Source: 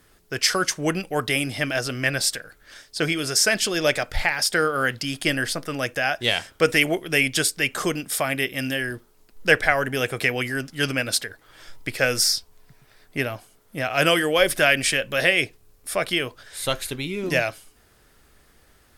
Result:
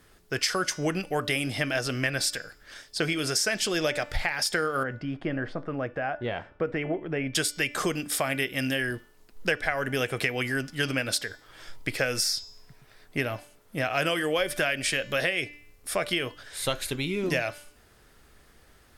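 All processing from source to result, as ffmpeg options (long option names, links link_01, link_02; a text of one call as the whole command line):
ffmpeg -i in.wav -filter_complex "[0:a]asettb=1/sr,asplit=3[link_01][link_02][link_03];[link_01]atrim=end=4.834[link_04];[link_02]atrim=start=4.83:end=7.35,asetpts=PTS-STARTPTS,afade=type=in:duration=0.004:curve=qsin,afade=type=out:start_time=2.516:duration=0.004:curve=qsin,lowpass=1200,acompressor=threshold=-30dB:ratio=1.5:attack=3.2:release=140:knee=1:detection=peak[link_05];[link_03]atrim=start=7.346[link_06];[link_04][link_05]acrossfade=duration=0.004:curve1=hsin:curve2=qsin[link_07];[link_07][link_06]acrossfade=duration=0.004:curve1=qsin:curve2=hsin,highshelf=frequency=8500:gain=-4.5,bandreject=frequency=292.9:width_type=h:width=4,bandreject=frequency=585.8:width_type=h:width=4,bandreject=frequency=878.7:width_type=h:width=4,bandreject=frequency=1171.6:width_type=h:width=4,bandreject=frequency=1464.5:width_type=h:width=4,bandreject=frequency=1757.4:width_type=h:width=4,bandreject=frequency=2050.3:width_type=h:width=4,bandreject=frequency=2343.2:width_type=h:width=4,bandreject=frequency=2636.1:width_type=h:width=4,bandreject=frequency=2929:width_type=h:width=4,bandreject=frequency=3221.9:width_type=h:width=4,bandreject=frequency=3514.8:width_type=h:width=4,bandreject=frequency=3807.7:width_type=h:width=4,bandreject=frequency=4100.6:width_type=h:width=4,bandreject=frequency=4393.5:width_type=h:width=4,bandreject=frequency=4686.4:width_type=h:width=4,bandreject=frequency=4979.3:width_type=h:width=4,bandreject=frequency=5272.2:width_type=h:width=4,bandreject=frequency=5565.1:width_type=h:width=4,bandreject=frequency=5858:width_type=h:width=4,bandreject=frequency=6150.9:width_type=h:width=4,bandreject=frequency=6443.8:width_type=h:width=4,bandreject=frequency=6736.7:width_type=h:width=4,bandreject=frequency=7029.6:width_type=h:width=4,bandreject=frequency=7322.5:width_type=h:width=4,bandreject=frequency=7615.4:width_type=h:width=4,bandreject=frequency=7908.3:width_type=h:width=4,acompressor=threshold=-23dB:ratio=6" out.wav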